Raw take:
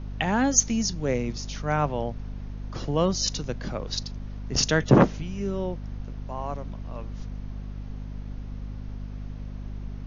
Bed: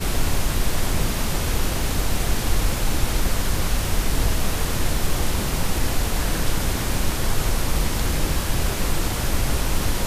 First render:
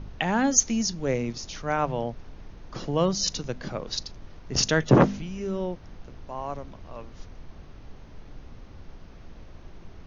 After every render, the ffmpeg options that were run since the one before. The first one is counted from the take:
-af "bandreject=f=50:t=h:w=4,bandreject=f=100:t=h:w=4,bandreject=f=150:t=h:w=4,bandreject=f=200:t=h:w=4,bandreject=f=250:t=h:w=4"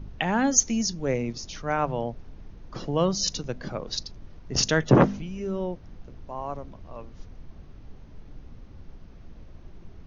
-af "afftdn=nr=6:nf=-46"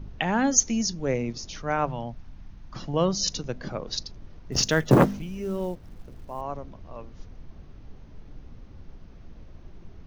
-filter_complex "[0:a]asettb=1/sr,asplit=3[a][b][c];[a]atrim=end=1.894[d];[b]atrim=start=1.89:end=2.94,asetpts=PTS-STARTPTS,afade=t=in:d=0.004:c=qsin,afade=t=out:st=1.046:d=0.004:c=qsin,equalizer=f=440:t=o:w=0.82:g=-12.5[e];[c]atrim=start=2.936[f];[d][e]acrossfade=d=0.004:c1=hsin:c2=qsin[g];[g][f]acrossfade=d=0.004:c1=qsin:c2=hsin,asettb=1/sr,asplit=3[h][i][j];[h]atrim=end=4.524[k];[i]atrim=start=4.52:end=6.41,asetpts=PTS-STARTPTS,afade=t=in:d=0.004:c=qsin,afade=t=out:st=1.886:d=0.004:c=qsin,acrusher=bits=7:mode=log:mix=0:aa=0.000001[l];[j]atrim=start=6.406[m];[k][l]acrossfade=d=0.004:c1=hsin:c2=qsin[n];[n][m]acrossfade=d=0.004:c1=qsin:c2=hsin"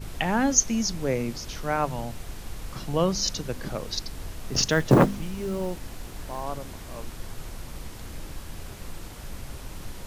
-filter_complex "[1:a]volume=-17.5dB[a];[0:a][a]amix=inputs=2:normalize=0"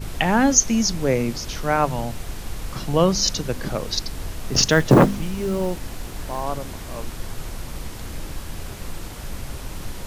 -af "volume=6dB,alimiter=limit=-3dB:level=0:latency=1"

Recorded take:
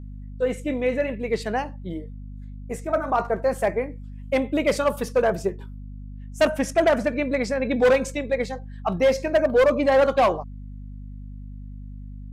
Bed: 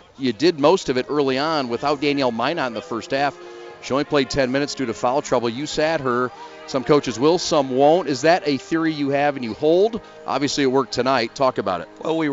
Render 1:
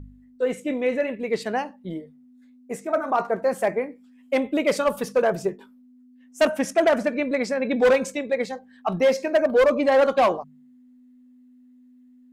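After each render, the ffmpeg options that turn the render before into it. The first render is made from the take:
-af "bandreject=f=50:t=h:w=4,bandreject=f=100:t=h:w=4,bandreject=f=150:t=h:w=4,bandreject=f=200:t=h:w=4"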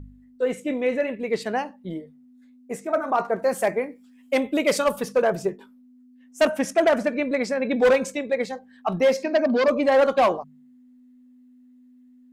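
-filter_complex "[0:a]asettb=1/sr,asplit=3[a][b][c];[a]atrim=end=3.394[d];[b]atrim=start=3.39:end=4.92,asetpts=PTS-STARTPTS,afade=t=in:d=0.004:c=qsin,afade=t=out:st=1.526:d=0.004:c=qsin,highshelf=f=3.7k:g=7[e];[c]atrim=start=4.916[f];[d][e]acrossfade=d=0.004:c1=hsin:c2=qsin[g];[g][f]acrossfade=d=0.004:c1=qsin:c2=hsin,asettb=1/sr,asplit=3[h][i][j];[h]atrim=end=9.234[k];[i]atrim=start=9.23:end=9.68,asetpts=PTS-STARTPTS,afade=t=in:d=0.004:c=qsin,afade=t=out:st=0.446:d=0.004:c=qsin,highpass=f=160:w=0.5412,highpass=f=160:w=1.3066,equalizer=f=240:t=q:w=4:g=9,equalizer=f=490:t=q:w=4:g=-6,equalizer=f=1.4k:t=q:w=4:g=-4,equalizer=f=4.7k:t=q:w=4:g=9,lowpass=f=6k:w=0.5412,lowpass=f=6k:w=1.3066[l];[j]atrim=start=9.676[m];[k][l]acrossfade=d=0.004:c1=hsin:c2=qsin[n];[n][m]acrossfade=d=0.004:c1=qsin:c2=hsin"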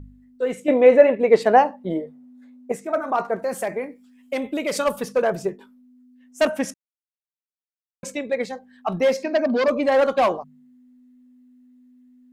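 -filter_complex "[0:a]asettb=1/sr,asplit=3[a][b][c];[a]atrim=end=0.684[d];[b]atrim=start=0.68:end=2.72,asetpts=PTS-STARTPTS,afade=t=in:d=0.004:c=qsin,afade=t=out:st=2.036:d=0.004:c=qsin,equalizer=f=690:w=0.53:g=13.5[e];[c]atrim=start=2.716[f];[d][e]acrossfade=d=0.004:c1=hsin:c2=qsin[g];[g][f]acrossfade=d=0.004:c1=qsin:c2=hsin,asettb=1/sr,asplit=3[h][i][j];[h]atrim=end=3.354[k];[i]atrim=start=3.35:end=4.76,asetpts=PTS-STARTPTS,afade=t=in:d=0.004:c=qsin,afade=t=out:st=1.406:d=0.004:c=qsin,acompressor=threshold=-22dB:ratio=2.5:attack=3.2:release=140:knee=1:detection=peak[l];[j]atrim=start=4.756[m];[k][l]acrossfade=d=0.004:c1=hsin:c2=qsin[n];[n][m]acrossfade=d=0.004:c1=qsin:c2=hsin,asplit=3[o][p][q];[o]atrim=end=6.74,asetpts=PTS-STARTPTS,afade=t=out:st=6.736:d=0.004:c=hsin[r];[p]atrim=start=6.74:end=8.03,asetpts=PTS-STARTPTS,volume=0[s];[q]atrim=start=8.03,asetpts=PTS-STARTPTS,afade=t=in:d=0.004:c=hsin[t];[r][s][t]concat=n=3:v=0:a=1"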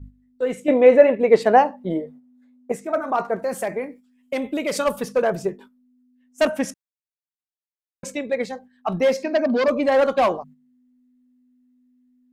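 -af "agate=range=-9dB:threshold=-43dB:ratio=16:detection=peak,lowshelf=f=200:g=3"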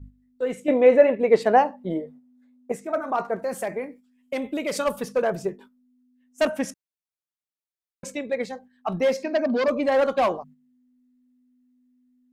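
-af "volume=-3dB"

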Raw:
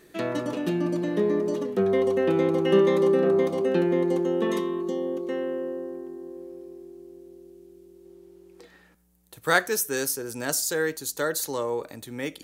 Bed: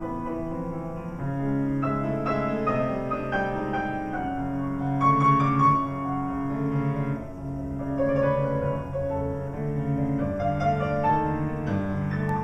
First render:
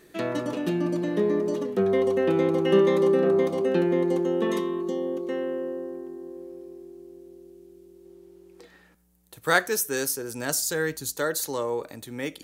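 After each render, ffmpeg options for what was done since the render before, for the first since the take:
-filter_complex "[0:a]asettb=1/sr,asplit=3[a][b][c];[a]atrim=end=10.324[d];[b]atrim=start=10.32:end=11.13,asetpts=PTS-STARTPTS,afade=t=in:d=0.004:c=qsin,afade=t=out:st=0.806:d=0.004:c=qsin,asubboost=boost=10:cutoff=210[e];[c]atrim=start=11.126[f];[d][e]acrossfade=d=0.004:c1=hsin:c2=qsin[g];[g][f]acrossfade=d=0.004:c1=qsin:c2=hsin"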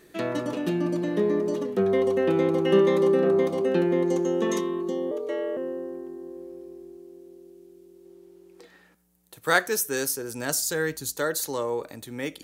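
-filter_complex "[0:a]asettb=1/sr,asplit=3[a][b][c];[a]atrim=end=4.064[d];[b]atrim=start=4.06:end=4.61,asetpts=PTS-STARTPTS,afade=t=in:d=0.004:c=qsin,afade=t=out:st=0.546:d=0.004:c=qsin,equalizer=f=6.4k:w=2.7:g=11.5[e];[c]atrim=start=4.606[f];[d][e]acrossfade=d=0.004:c1=hsin:c2=qsin[g];[g][f]acrossfade=d=0.004:c1=qsin:c2=hsin,asettb=1/sr,asplit=3[h][i][j];[h]atrim=end=5.114[k];[i]atrim=start=5.11:end=5.57,asetpts=PTS-STARTPTS,afade=t=in:d=0.004:c=qsin,afade=t=out:st=0.456:d=0.004:c=qsin,afreqshift=75[l];[j]atrim=start=5.566[m];[k][l]acrossfade=d=0.004:c1=hsin:c2=qsin[n];[n][m]acrossfade=d=0.004:c1=qsin:c2=hsin,asettb=1/sr,asplit=3[o][p][q];[o]atrim=end=6.974[r];[p]atrim=start=6.97:end=9.66,asetpts=PTS-STARTPTS,afade=t=in:d=0.004:c=qsin,afade=t=out:st=2.686:d=0.004:c=qsin,highpass=f=130:p=1[s];[q]atrim=start=9.656[t];[r][s]acrossfade=d=0.004:c1=hsin:c2=qsin[u];[u][t]acrossfade=d=0.004:c1=qsin:c2=hsin"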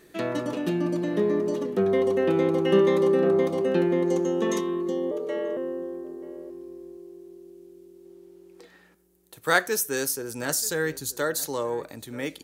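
-filter_complex "[0:a]asplit=2[a][b];[b]adelay=932.9,volume=-18dB,highshelf=f=4k:g=-21[c];[a][c]amix=inputs=2:normalize=0"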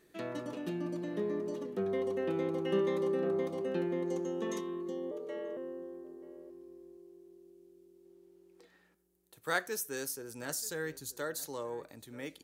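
-af "volume=-11dB"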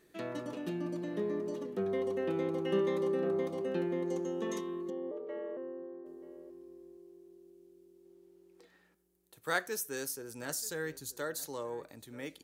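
-filter_complex "[0:a]asettb=1/sr,asplit=3[a][b][c];[a]atrim=end=4.904[d];[b]atrim=start=4.9:end=6.06,asetpts=PTS-STARTPTS,afade=t=in:d=0.004:c=qsin,afade=t=out:st=1.156:d=0.004:c=qsin,highpass=210,lowpass=2k[e];[c]atrim=start=6.056[f];[d][e]acrossfade=d=0.004:c1=hsin:c2=qsin[g];[g][f]acrossfade=d=0.004:c1=qsin:c2=hsin"

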